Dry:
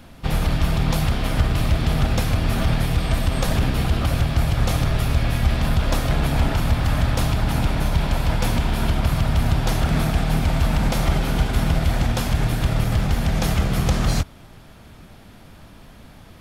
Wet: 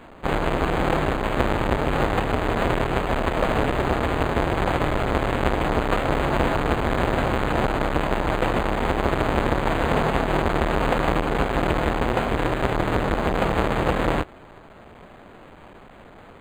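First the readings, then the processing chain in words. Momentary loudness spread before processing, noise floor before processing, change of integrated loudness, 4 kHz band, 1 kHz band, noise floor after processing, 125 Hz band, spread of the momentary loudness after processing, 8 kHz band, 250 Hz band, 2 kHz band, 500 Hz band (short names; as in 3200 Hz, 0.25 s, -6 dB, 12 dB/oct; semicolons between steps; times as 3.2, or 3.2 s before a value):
1 LU, -45 dBFS, -1.5 dB, -4.0 dB, +5.5 dB, -46 dBFS, -7.5 dB, 2 LU, -10.0 dB, 0.0 dB, +3.0 dB, +7.0 dB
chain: half-waves squared off; tone controls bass -15 dB, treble -8 dB; decimation joined by straight lines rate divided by 8×; gain +2.5 dB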